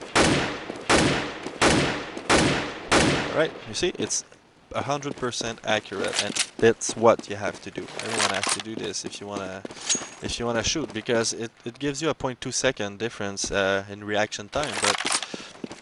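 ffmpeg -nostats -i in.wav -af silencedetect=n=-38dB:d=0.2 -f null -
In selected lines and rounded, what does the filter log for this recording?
silence_start: 4.34
silence_end: 4.71 | silence_duration: 0.37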